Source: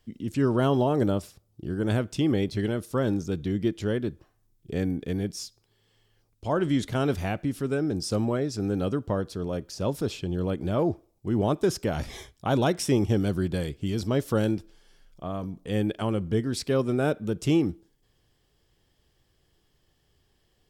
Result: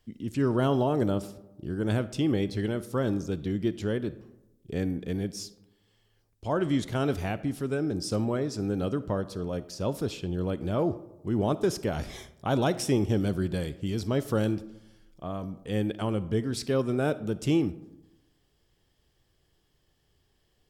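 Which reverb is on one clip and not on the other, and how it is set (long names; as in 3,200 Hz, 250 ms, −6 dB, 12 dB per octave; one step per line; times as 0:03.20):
comb and all-pass reverb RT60 1 s, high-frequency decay 0.4×, pre-delay 10 ms, DRR 15.5 dB
level −2 dB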